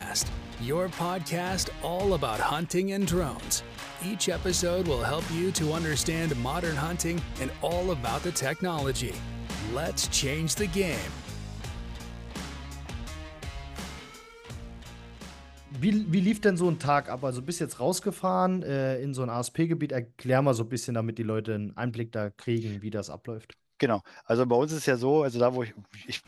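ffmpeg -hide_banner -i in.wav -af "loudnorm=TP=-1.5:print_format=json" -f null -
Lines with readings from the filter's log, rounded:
"input_i" : "-28.7",
"input_tp" : "-10.7",
"input_lra" : "4.3",
"input_thresh" : "-39.4",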